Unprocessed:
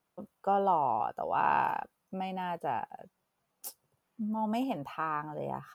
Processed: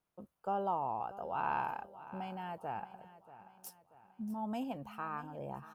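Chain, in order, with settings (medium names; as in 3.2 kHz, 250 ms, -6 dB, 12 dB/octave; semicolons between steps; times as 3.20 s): bass shelf 82 Hz +10.5 dB; on a send: feedback delay 635 ms, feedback 46%, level -16 dB; on the sum: trim -7.5 dB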